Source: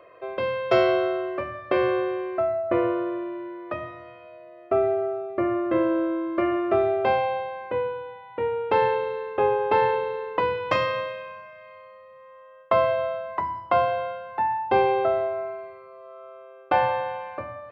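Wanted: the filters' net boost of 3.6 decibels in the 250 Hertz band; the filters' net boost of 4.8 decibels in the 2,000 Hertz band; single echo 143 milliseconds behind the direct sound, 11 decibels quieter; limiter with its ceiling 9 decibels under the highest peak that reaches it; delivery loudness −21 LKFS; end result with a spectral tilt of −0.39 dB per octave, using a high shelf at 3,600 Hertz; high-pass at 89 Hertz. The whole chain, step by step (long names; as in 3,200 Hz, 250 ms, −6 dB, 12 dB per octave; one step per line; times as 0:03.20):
high-pass filter 89 Hz
parametric band 250 Hz +6.5 dB
parametric band 2,000 Hz +8 dB
high-shelf EQ 3,600 Hz −6.5 dB
brickwall limiter −14.5 dBFS
single-tap delay 143 ms −11 dB
level +3 dB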